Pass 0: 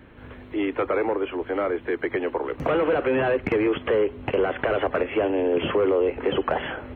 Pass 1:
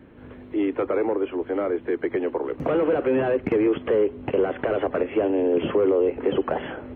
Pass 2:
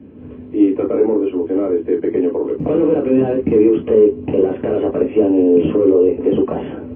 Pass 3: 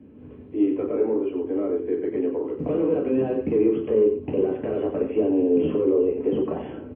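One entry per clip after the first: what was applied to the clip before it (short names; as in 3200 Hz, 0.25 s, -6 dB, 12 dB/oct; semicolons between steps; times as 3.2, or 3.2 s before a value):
bell 280 Hz +9 dB 2.8 oct; gain -6.5 dB
reverb, pre-delay 3 ms, DRR 2 dB; gain -14 dB
echo 90 ms -8.5 dB; gain -8.5 dB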